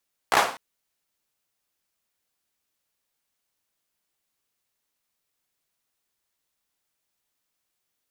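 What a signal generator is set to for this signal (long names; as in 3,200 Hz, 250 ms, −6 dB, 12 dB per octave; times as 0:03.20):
synth clap length 0.25 s, apart 16 ms, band 840 Hz, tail 0.43 s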